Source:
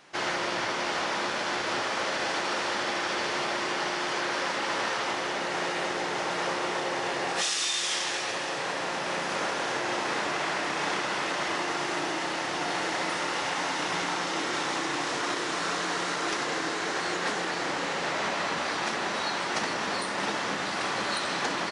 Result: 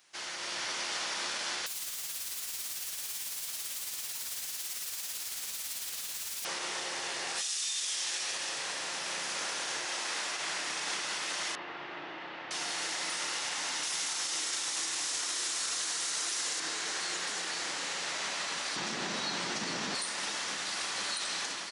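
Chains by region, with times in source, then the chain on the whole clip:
1.66–6.45 wrapped overs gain 32 dB + high shelf 10000 Hz -11.5 dB + tremolo 18 Hz, depth 34%
9.85–10.41 low shelf 120 Hz -12 dB + notches 50/100/150/200/250/300/350/400/450 Hz
11.55–12.51 LPF 3400 Hz 24 dB/oct + high shelf 2300 Hz -11.5 dB
13.83–16.6 high shelf 5200 Hz +10.5 dB + notches 60/120/180/240/300/360/420 Hz
18.76–19.95 LPF 7600 Hz + bell 180 Hz +14.5 dB 2.5 oct
whole clip: pre-emphasis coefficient 0.9; limiter -30 dBFS; AGC gain up to 5.5 dB

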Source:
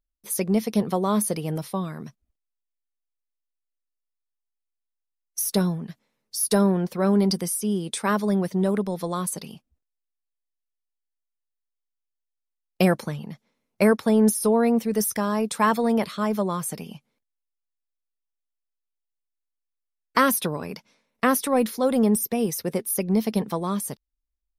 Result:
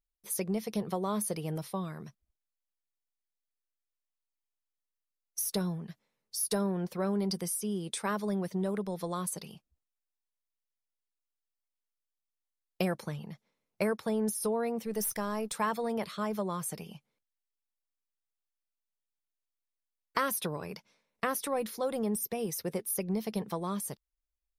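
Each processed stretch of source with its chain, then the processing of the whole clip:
14.86–15.53 half-wave gain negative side -3 dB + high shelf 11000 Hz +5.5 dB
whole clip: compressor 2:1, threshold -23 dBFS; bell 250 Hz -11 dB 0.22 oct; gain -6 dB

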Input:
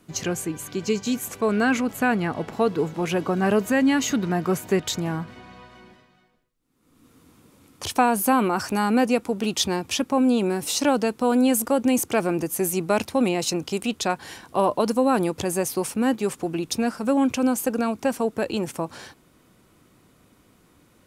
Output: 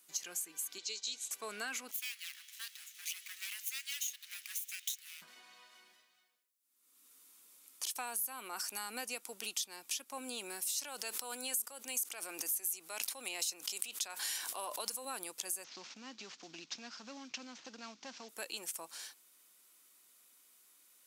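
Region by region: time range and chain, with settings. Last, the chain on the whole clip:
0.78–1.31 G.711 law mismatch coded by A + speaker cabinet 350–7400 Hz, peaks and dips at 660 Hz -7 dB, 1100 Hz -9 dB, 1700 Hz -8 dB, 3900 Hz +10 dB
1.91–5.22 minimum comb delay 0.32 ms + inverse Chebyshev high-pass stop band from 530 Hz, stop band 60 dB + short-mantissa float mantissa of 2-bit
10.78–15.05 low shelf 200 Hz -11.5 dB + fast leveller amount 70%
15.64–18.29 CVSD 32 kbps + resonant low shelf 310 Hz +6 dB, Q 1.5 + compressor 5:1, threshold -22 dBFS
whole clip: HPF 200 Hz 12 dB/oct; differentiator; compressor 4:1, threshold -38 dBFS; gain +1 dB

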